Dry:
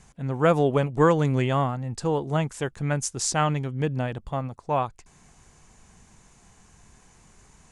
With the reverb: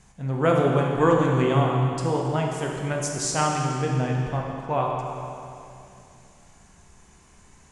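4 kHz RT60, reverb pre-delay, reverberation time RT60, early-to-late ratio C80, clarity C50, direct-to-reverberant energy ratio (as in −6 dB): 2.3 s, 16 ms, 2.6 s, 2.0 dB, 1.0 dB, −1.0 dB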